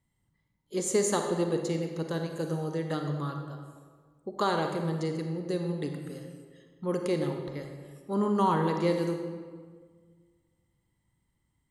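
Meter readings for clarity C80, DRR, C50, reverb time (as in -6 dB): 6.5 dB, 4.0 dB, 5.0 dB, 1.6 s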